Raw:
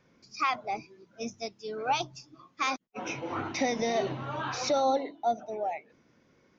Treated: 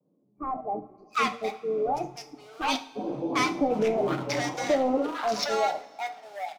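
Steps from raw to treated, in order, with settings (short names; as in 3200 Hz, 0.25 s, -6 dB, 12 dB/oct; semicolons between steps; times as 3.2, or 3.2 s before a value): Wiener smoothing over 25 samples; HPF 150 Hz 24 dB/oct; comb 6.7 ms, depth 35%; sample leveller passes 2; bands offset in time lows, highs 0.75 s, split 870 Hz; vibrato 2 Hz 71 cents; two-slope reverb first 0.43 s, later 3 s, from -20 dB, DRR 7.5 dB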